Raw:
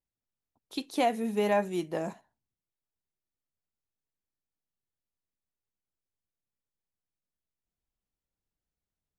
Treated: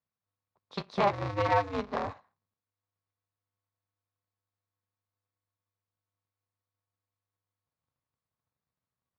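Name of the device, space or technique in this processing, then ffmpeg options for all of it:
ring modulator pedal into a guitar cabinet: -af "aeval=exprs='val(0)*sgn(sin(2*PI*100*n/s))':channel_layout=same,highpass=80,equalizer=frequency=320:width_type=q:width=4:gain=-10,equalizer=frequency=1100:width_type=q:width=4:gain=8,equalizer=frequency=3000:width_type=q:width=4:gain=-7,lowpass=frequency=4600:width=0.5412,lowpass=frequency=4600:width=1.3066"

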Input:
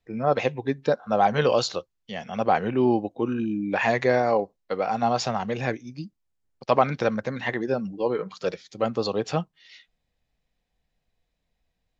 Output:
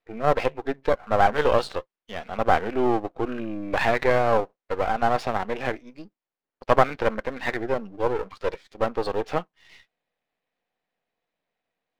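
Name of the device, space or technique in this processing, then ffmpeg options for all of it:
crystal radio: -af "highpass=340,lowpass=2600,aeval=exprs='if(lt(val(0),0),0.251*val(0),val(0))':channel_layout=same,volume=5dB"

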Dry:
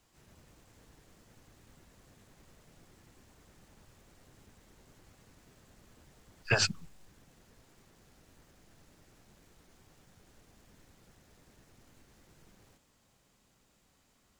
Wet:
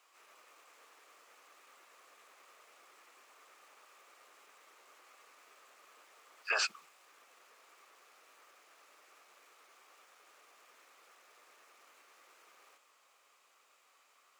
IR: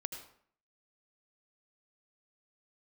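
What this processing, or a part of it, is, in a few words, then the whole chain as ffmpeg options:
laptop speaker: -af "highpass=frequency=450:width=0.5412,highpass=frequency=450:width=1.3066,equalizer=frequency=1200:width_type=o:width=0.39:gain=12,equalizer=frequency=2400:width_type=o:width=0.59:gain=7.5,alimiter=limit=-21.5dB:level=0:latency=1:release=36"

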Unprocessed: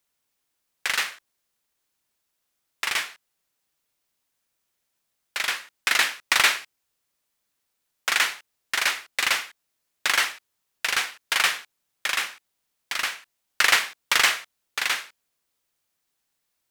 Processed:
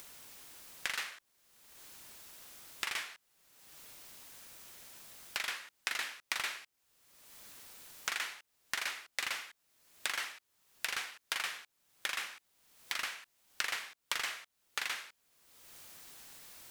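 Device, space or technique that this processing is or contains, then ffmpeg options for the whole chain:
upward and downward compression: -af "acompressor=mode=upward:threshold=-29dB:ratio=2.5,acompressor=threshold=-31dB:ratio=8,volume=-2.5dB"

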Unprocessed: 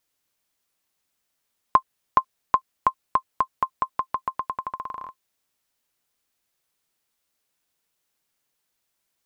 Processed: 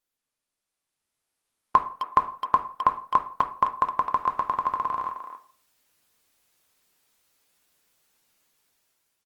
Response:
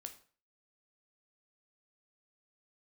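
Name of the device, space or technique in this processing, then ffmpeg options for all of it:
speakerphone in a meeting room: -filter_complex "[1:a]atrim=start_sample=2205[link_01];[0:a][link_01]afir=irnorm=-1:irlink=0,asplit=2[link_02][link_03];[link_03]adelay=260,highpass=300,lowpass=3400,asoftclip=type=hard:threshold=-18.5dB,volume=-9dB[link_04];[link_02][link_04]amix=inputs=2:normalize=0,dynaudnorm=framelen=440:gausssize=5:maxgain=16dB,volume=-3dB" -ar 48000 -c:a libopus -b:a 32k

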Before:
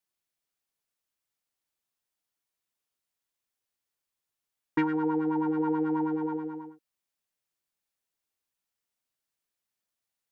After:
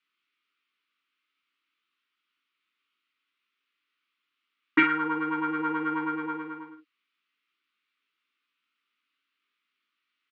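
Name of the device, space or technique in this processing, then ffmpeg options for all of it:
phone earpiece: -af "highpass=360,equalizer=frequency=360:width_type=q:width=4:gain=-5,equalizer=frequency=540:width_type=q:width=4:gain=-8,equalizer=frequency=930:width_type=q:width=4:gain=-3,equalizer=frequency=1700:width_type=q:width=4:gain=-9,lowpass=frequency=3000:width=0.5412,lowpass=frequency=3000:width=1.3066,firequalizer=gain_entry='entry(110,0);entry(290,10);entry(700,-16);entry(1200,12)':delay=0.05:min_phase=1,aecho=1:1:18|53:0.596|0.447,volume=4dB"

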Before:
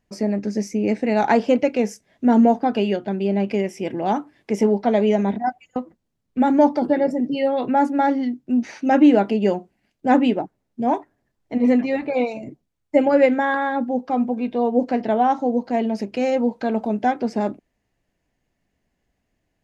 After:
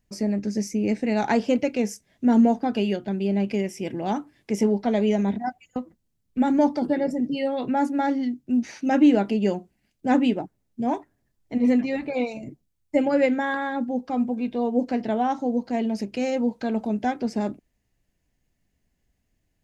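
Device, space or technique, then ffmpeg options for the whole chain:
smiley-face EQ: -af "lowshelf=frequency=140:gain=7.5,equalizer=frequency=760:width_type=o:width=2.1:gain=-3.5,highshelf=frequency=5400:gain=8.5,volume=-3.5dB"

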